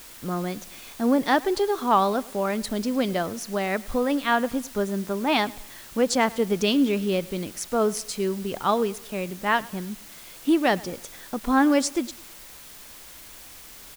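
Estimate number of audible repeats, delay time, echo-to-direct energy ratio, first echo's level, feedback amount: 2, 106 ms, −21.0 dB, −22.0 dB, 42%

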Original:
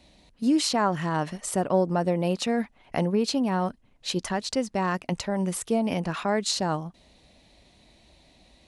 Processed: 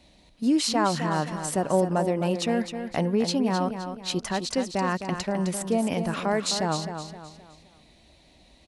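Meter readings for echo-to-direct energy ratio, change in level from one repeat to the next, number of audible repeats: −8.0 dB, −8.5 dB, 4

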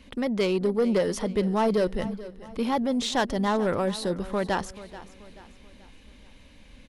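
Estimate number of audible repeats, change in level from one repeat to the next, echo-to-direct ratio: 3, −7.5 dB, −15.5 dB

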